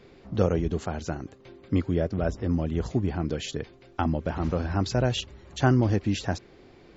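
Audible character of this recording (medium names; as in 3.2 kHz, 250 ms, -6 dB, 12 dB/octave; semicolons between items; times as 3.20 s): noise floor -53 dBFS; spectral tilt -6.5 dB/octave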